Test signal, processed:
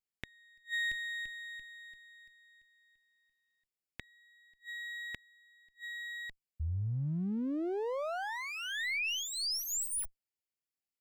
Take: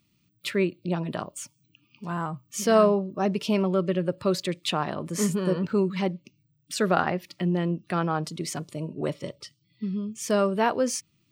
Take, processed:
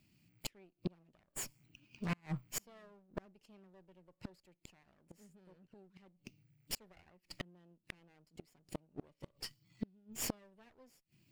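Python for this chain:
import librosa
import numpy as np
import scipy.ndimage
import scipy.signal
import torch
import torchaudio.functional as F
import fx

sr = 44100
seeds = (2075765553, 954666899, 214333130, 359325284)

y = fx.lower_of_two(x, sr, delay_ms=0.4)
y = fx.gate_flip(y, sr, shuts_db=-24.0, range_db=-35)
y = y * librosa.db_to_amplitude(-1.5)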